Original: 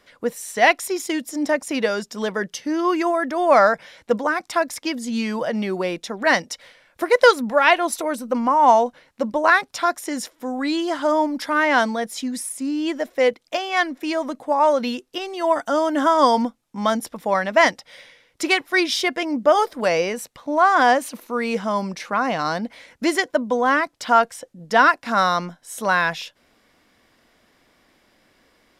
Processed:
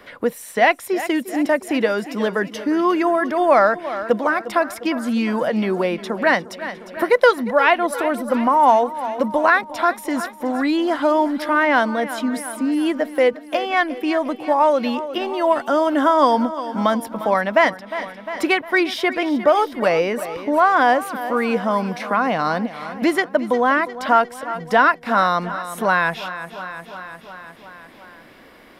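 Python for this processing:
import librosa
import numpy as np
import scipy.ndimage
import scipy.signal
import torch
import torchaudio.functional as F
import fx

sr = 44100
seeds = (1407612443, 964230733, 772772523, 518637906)

p1 = fx.peak_eq(x, sr, hz=6500.0, db=-11.0, octaves=1.2)
p2 = p1 + fx.echo_feedback(p1, sr, ms=354, feedback_pct=58, wet_db=-16, dry=0)
p3 = fx.band_squash(p2, sr, depth_pct=40)
y = p3 * 10.0 ** (2.0 / 20.0)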